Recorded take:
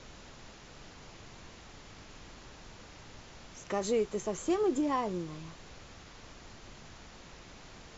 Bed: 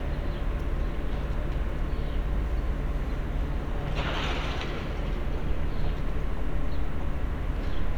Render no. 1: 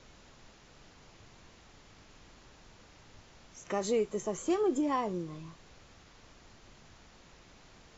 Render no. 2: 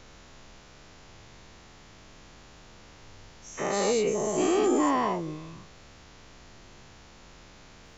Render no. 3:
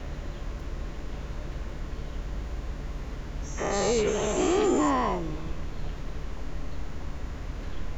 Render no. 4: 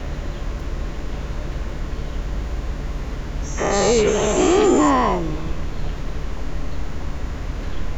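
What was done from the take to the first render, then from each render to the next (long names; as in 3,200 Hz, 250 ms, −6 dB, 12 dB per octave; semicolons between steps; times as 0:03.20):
noise reduction from a noise print 6 dB
every bin's largest magnitude spread in time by 240 ms
mix in bed −6 dB
level +8.5 dB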